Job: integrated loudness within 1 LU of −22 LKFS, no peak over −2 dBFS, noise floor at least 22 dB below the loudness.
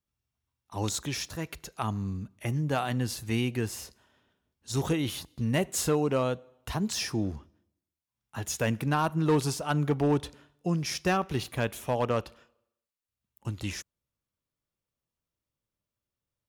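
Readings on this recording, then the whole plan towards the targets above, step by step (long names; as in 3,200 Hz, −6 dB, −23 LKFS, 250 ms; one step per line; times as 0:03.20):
share of clipped samples 0.2%; peaks flattened at −18.5 dBFS; integrated loudness −30.0 LKFS; sample peak −18.5 dBFS; target loudness −22.0 LKFS
→ clipped peaks rebuilt −18.5 dBFS
level +8 dB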